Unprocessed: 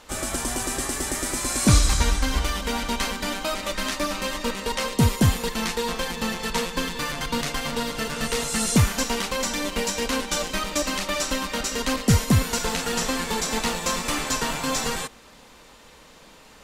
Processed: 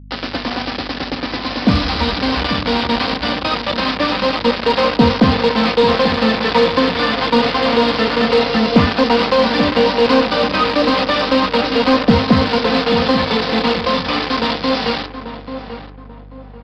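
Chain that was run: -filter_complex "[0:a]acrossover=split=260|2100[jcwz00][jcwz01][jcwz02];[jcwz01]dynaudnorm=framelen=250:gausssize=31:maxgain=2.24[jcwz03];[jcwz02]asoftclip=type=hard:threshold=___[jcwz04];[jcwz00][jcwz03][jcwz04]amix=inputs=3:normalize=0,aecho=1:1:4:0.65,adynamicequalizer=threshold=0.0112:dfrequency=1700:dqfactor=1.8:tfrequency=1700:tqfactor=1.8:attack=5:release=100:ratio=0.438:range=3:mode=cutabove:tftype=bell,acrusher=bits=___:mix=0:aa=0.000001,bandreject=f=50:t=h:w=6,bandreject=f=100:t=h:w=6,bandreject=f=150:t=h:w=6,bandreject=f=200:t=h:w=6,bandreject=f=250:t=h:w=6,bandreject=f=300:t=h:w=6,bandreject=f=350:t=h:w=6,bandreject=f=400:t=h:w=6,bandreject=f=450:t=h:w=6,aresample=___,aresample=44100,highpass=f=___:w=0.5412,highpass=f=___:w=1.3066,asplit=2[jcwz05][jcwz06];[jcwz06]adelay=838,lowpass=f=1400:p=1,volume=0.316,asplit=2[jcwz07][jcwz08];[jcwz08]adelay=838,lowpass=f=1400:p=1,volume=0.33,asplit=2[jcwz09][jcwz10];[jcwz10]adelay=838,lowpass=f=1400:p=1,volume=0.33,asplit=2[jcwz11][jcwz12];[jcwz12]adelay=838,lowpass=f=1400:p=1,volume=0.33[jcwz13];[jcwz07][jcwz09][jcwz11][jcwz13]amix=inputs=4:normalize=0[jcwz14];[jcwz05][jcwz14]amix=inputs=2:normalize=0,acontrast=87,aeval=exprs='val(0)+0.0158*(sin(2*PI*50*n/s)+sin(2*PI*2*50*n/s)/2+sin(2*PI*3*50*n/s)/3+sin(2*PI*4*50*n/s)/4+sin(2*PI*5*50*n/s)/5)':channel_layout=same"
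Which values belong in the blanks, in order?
0.0398, 3, 11025, 78, 78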